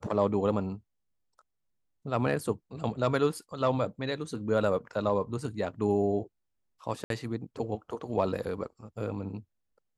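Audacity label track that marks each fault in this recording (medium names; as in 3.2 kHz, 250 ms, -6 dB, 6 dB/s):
7.040000	7.100000	dropout 62 ms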